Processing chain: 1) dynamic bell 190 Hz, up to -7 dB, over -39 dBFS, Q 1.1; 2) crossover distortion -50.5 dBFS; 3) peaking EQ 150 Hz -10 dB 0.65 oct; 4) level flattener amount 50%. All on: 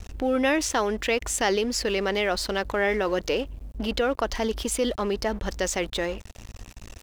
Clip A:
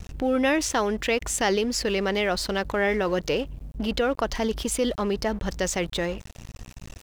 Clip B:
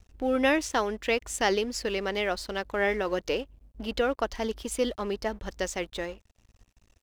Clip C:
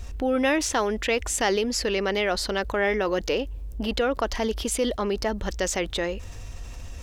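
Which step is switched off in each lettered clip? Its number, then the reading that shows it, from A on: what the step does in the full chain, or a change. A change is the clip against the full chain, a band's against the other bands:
3, 125 Hz band +3.0 dB; 4, crest factor change +2.5 dB; 2, distortion -25 dB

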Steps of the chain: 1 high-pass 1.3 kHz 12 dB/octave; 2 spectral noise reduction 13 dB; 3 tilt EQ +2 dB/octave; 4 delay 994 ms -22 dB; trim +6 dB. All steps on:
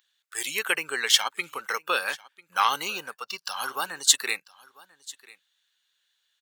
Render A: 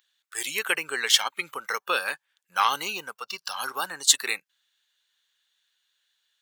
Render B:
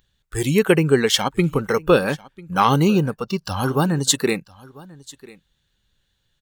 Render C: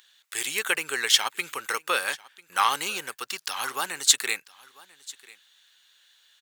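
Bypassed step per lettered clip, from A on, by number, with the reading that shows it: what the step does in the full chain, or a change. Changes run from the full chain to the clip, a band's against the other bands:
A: 4, momentary loudness spread change -2 LU; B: 1, 250 Hz band +26.0 dB; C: 2, momentary loudness spread change -1 LU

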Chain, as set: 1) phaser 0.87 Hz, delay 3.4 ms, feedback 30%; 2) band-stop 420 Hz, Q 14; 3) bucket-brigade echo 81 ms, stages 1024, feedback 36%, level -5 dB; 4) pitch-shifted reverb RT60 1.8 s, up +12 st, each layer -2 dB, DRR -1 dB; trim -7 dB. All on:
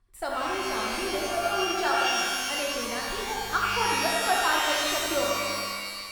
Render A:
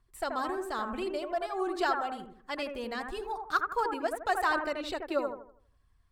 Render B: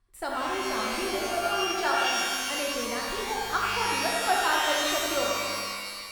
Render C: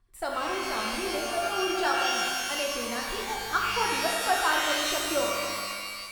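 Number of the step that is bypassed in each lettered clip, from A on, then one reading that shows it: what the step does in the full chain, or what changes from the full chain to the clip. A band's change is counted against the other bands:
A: 4, 8 kHz band -15.5 dB; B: 1, 125 Hz band -2.0 dB; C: 3, 125 Hz band -3.0 dB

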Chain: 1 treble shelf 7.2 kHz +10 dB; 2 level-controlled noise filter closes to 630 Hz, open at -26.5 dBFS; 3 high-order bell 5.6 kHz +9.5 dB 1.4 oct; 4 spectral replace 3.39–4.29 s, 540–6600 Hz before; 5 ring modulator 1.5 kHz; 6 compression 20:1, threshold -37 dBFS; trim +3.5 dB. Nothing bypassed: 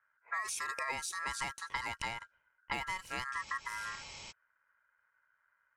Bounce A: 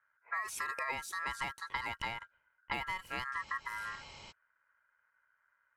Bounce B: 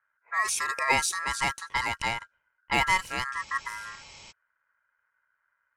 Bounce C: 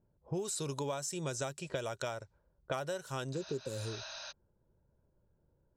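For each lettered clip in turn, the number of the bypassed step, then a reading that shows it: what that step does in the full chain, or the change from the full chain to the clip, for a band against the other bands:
3, 8 kHz band -6.0 dB; 6, mean gain reduction 7.5 dB; 5, crest factor change -2.5 dB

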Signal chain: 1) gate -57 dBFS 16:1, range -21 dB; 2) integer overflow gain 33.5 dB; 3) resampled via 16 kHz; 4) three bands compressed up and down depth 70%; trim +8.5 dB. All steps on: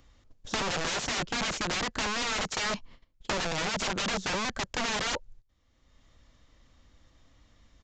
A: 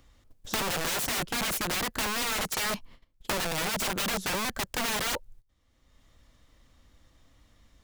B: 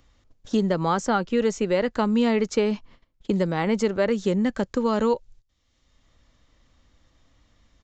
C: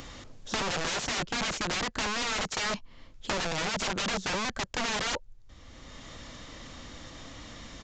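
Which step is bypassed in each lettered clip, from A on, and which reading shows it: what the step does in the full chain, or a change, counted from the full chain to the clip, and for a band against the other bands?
3, 8 kHz band +3.0 dB; 2, crest factor change -6.5 dB; 1, momentary loudness spread change +12 LU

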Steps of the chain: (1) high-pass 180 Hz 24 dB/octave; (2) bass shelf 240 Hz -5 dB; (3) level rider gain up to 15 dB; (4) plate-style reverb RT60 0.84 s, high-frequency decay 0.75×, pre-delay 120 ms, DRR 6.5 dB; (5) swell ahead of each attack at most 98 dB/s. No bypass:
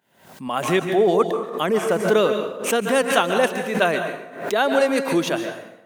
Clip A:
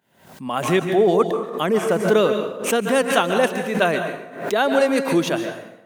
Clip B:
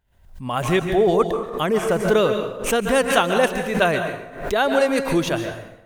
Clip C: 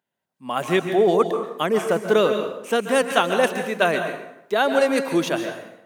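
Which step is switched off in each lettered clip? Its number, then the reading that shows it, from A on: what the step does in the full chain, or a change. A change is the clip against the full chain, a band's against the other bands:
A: 2, 125 Hz band +3.0 dB; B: 1, 125 Hz band +4.0 dB; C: 5, 8 kHz band -3.0 dB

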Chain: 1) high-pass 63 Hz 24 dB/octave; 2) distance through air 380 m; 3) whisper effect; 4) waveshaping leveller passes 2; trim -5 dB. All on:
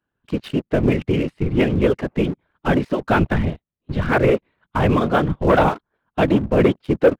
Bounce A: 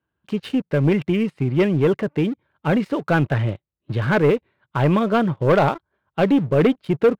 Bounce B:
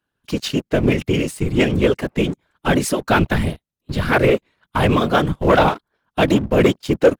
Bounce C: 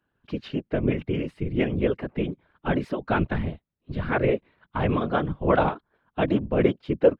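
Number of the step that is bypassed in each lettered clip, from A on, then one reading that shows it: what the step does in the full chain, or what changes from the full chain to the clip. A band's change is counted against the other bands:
3, 125 Hz band +1.5 dB; 2, 4 kHz band +6.5 dB; 4, crest factor change +6.5 dB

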